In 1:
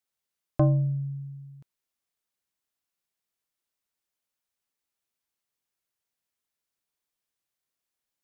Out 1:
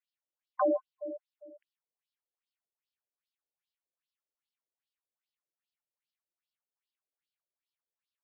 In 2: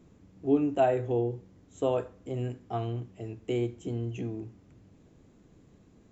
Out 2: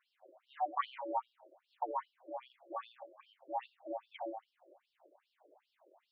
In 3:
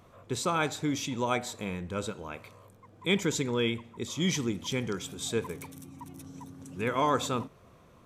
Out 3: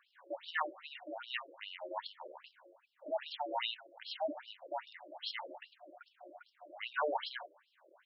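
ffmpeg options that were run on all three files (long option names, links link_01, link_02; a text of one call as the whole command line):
ffmpeg -i in.wav -af "aeval=exprs='val(0)*sin(2*PI*450*n/s)':channel_layout=same,asubboost=boost=3:cutoff=210,afftfilt=real='re*between(b*sr/1024,420*pow(4000/420,0.5+0.5*sin(2*PI*2.5*pts/sr))/1.41,420*pow(4000/420,0.5+0.5*sin(2*PI*2.5*pts/sr))*1.41)':imag='im*between(b*sr/1024,420*pow(4000/420,0.5+0.5*sin(2*PI*2.5*pts/sr))/1.41,420*pow(4000/420,0.5+0.5*sin(2*PI*2.5*pts/sr))*1.41)':win_size=1024:overlap=0.75,volume=2dB" out.wav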